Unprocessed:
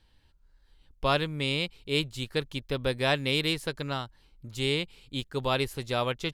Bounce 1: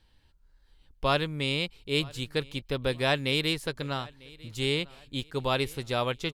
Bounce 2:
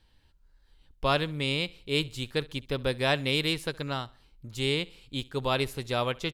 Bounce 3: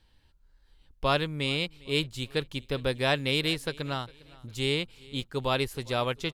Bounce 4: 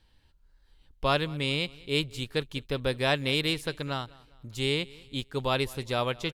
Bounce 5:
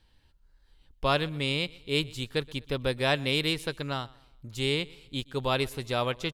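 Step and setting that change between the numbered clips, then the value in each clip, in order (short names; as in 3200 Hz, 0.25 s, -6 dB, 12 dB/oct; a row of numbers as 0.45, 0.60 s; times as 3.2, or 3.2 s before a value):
feedback echo, time: 948, 67, 405, 201, 124 ms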